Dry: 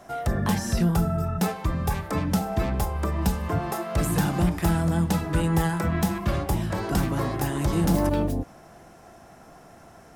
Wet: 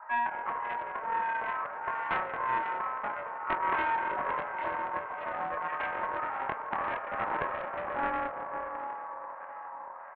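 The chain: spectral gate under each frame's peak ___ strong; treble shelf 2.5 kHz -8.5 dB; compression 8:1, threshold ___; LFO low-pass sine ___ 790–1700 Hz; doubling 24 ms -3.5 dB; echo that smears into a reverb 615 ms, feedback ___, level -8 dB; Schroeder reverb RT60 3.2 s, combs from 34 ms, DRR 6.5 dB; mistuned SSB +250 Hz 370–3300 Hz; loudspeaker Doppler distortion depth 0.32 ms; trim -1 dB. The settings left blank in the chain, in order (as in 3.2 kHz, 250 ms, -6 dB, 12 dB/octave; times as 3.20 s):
-20 dB, -28 dBFS, 1.6 Hz, 53%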